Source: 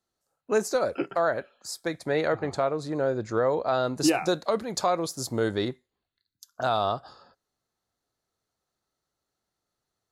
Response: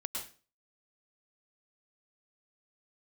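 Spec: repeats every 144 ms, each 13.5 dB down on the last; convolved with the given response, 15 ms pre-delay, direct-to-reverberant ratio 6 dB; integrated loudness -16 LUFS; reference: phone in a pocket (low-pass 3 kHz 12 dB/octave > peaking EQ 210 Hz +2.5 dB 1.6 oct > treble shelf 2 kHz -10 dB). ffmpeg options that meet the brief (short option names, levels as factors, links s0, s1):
-filter_complex "[0:a]aecho=1:1:144|288:0.211|0.0444,asplit=2[s0][s1];[1:a]atrim=start_sample=2205,adelay=15[s2];[s1][s2]afir=irnorm=-1:irlink=0,volume=0.447[s3];[s0][s3]amix=inputs=2:normalize=0,lowpass=3000,equalizer=f=210:t=o:w=1.6:g=2.5,highshelf=f=2000:g=-10,volume=3.35"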